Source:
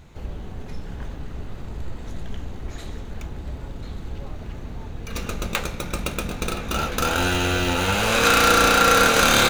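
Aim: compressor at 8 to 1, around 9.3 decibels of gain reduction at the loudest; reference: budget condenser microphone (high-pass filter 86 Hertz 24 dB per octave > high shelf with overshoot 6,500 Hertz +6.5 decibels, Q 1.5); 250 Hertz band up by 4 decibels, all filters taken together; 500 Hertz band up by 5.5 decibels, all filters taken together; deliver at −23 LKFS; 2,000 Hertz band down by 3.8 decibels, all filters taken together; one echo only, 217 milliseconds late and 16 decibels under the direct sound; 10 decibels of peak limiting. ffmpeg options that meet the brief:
ffmpeg -i in.wav -af "equalizer=frequency=250:width_type=o:gain=3.5,equalizer=frequency=500:width_type=o:gain=5.5,equalizer=frequency=2000:width_type=o:gain=-5.5,acompressor=threshold=-21dB:ratio=8,alimiter=limit=-18dB:level=0:latency=1,highpass=frequency=86:width=0.5412,highpass=frequency=86:width=1.3066,highshelf=frequency=6500:width_type=q:width=1.5:gain=6.5,aecho=1:1:217:0.158,volume=8dB" out.wav

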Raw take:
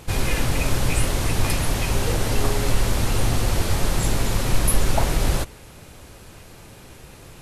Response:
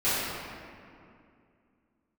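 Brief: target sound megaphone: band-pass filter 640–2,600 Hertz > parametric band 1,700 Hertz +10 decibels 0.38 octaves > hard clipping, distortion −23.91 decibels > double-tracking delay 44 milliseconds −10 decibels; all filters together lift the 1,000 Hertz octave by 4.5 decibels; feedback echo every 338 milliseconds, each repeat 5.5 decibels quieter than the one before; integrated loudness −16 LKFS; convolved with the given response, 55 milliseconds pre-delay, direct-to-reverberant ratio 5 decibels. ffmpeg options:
-filter_complex "[0:a]equalizer=frequency=1000:width_type=o:gain=6,aecho=1:1:338|676|1014|1352|1690|2028|2366:0.531|0.281|0.149|0.079|0.0419|0.0222|0.0118,asplit=2[link_01][link_02];[1:a]atrim=start_sample=2205,adelay=55[link_03];[link_02][link_03]afir=irnorm=-1:irlink=0,volume=-19dB[link_04];[link_01][link_04]amix=inputs=2:normalize=0,highpass=640,lowpass=2600,equalizer=frequency=1700:width_type=o:width=0.38:gain=10,asoftclip=type=hard:threshold=-15.5dB,asplit=2[link_05][link_06];[link_06]adelay=44,volume=-10dB[link_07];[link_05][link_07]amix=inputs=2:normalize=0,volume=8dB"

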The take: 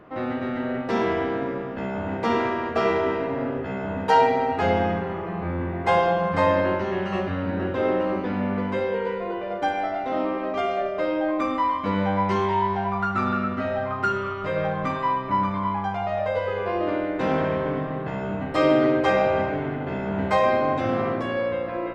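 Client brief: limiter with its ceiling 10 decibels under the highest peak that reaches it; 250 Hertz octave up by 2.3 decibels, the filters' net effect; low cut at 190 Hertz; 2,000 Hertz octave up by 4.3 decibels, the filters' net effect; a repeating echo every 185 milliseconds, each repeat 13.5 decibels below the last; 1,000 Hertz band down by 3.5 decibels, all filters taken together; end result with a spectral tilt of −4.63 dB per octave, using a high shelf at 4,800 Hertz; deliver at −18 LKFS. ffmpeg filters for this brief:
ffmpeg -i in.wav -af "highpass=190,equalizer=frequency=250:width_type=o:gain=5,equalizer=frequency=1000:width_type=o:gain=-6.5,equalizer=frequency=2000:width_type=o:gain=8,highshelf=frequency=4800:gain=-4,alimiter=limit=-16.5dB:level=0:latency=1,aecho=1:1:185|370:0.211|0.0444,volume=8dB" out.wav

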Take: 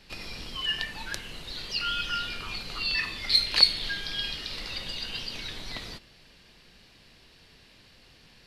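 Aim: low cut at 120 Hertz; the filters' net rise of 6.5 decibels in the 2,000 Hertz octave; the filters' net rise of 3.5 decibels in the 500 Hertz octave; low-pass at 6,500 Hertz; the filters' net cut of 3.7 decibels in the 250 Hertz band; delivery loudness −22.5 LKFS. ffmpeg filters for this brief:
ffmpeg -i in.wav -af "highpass=120,lowpass=6500,equalizer=frequency=250:width_type=o:gain=-6.5,equalizer=frequency=500:width_type=o:gain=5.5,equalizer=frequency=2000:width_type=o:gain=8.5,volume=3.5dB" out.wav

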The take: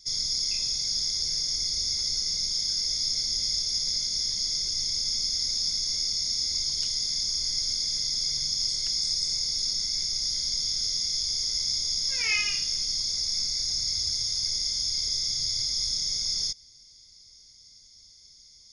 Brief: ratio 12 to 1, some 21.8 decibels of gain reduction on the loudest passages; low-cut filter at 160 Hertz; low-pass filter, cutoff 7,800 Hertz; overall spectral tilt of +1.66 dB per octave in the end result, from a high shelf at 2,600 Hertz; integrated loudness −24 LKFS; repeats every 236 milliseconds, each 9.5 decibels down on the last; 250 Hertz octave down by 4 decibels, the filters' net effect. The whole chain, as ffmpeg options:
ffmpeg -i in.wav -af "highpass=160,lowpass=7800,equalizer=frequency=250:width_type=o:gain=-3.5,highshelf=frequency=2600:gain=-6,acompressor=threshold=-48dB:ratio=12,aecho=1:1:236|472|708|944:0.335|0.111|0.0365|0.012,volume=23.5dB" out.wav

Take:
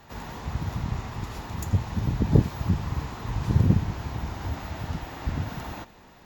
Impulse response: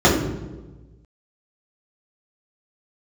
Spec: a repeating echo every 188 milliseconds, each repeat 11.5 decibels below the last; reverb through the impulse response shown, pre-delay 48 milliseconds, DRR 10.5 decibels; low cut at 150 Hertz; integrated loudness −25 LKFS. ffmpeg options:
-filter_complex "[0:a]highpass=150,aecho=1:1:188|376|564:0.266|0.0718|0.0194,asplit=2[link_01][link_02];[1:a]atrim=start_sample=2205,adelay=48[link_03];[link_02][link_03]afir=irnorm=-1:irlink=0,volume=-35dB[link_04];[link_01][link_04]amix=inputs=2:normalize=0,volume=5dB"

